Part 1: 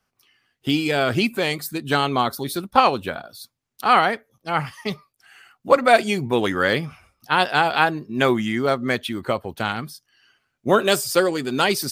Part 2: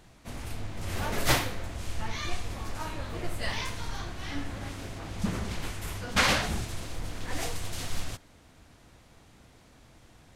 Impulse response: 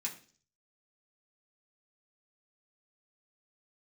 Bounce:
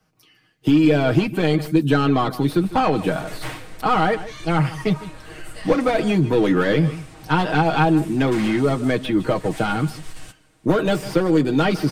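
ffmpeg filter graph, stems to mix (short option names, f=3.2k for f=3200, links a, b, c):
-filter_complex "[0:a]equalizer=f=1.3k:w=0.33:g=-12,asplit=2[a][b];[b]highpass=f=720:p=1,volume=22dB,asoftclip=type=tanh:threshold=-10dB[c];[a][c]amix=inputs=2:normalize=0,lowpass=f=1.9k:p=1,volume=-6dB,lowshelf=f=370:g=11,volume=0.5dB,asplit=2[d][e];[e]volume=-18dB[f];[1:a]equalizer=f=8.7k:w=5.5:g=8,aeval=exprs='(tanh(11.2*val(0)+0.3)-tanh(0.3))/11.2':c=same,adelay=2150,volume=-4.5dB,asplit=2[g][h];[h]volume=-10dB[i];[2:a]atrim=start_sample=2205[j];[i][j]afir=irnorm=-1:irlink=0[k];[f]aecho=0:1:152:1[l];[d][g][k][l]amix=inputs=4:normalize=0,acrossover=split=160|3400[m][n][o];[m]acompressor=threshold=-30dB:ratio=4[p];[n]acompressor=threshold=-16dB:ratio=4[q];[o]acompressor=threshold=-44dB:ratio=4[r];[p][q][r]amix=inputs=3:normalize=0,aecho=1:1:6.4:0.67"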